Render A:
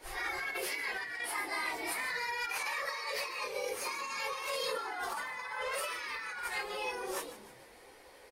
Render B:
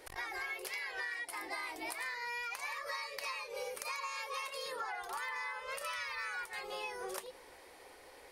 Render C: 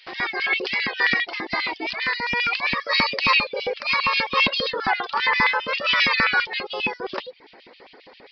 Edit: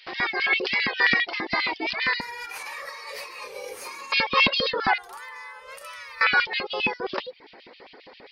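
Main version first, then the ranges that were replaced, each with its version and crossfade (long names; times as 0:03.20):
C
0:02.21–0:04.12: punch in from A
0:04.98–0:06.21: punch in from B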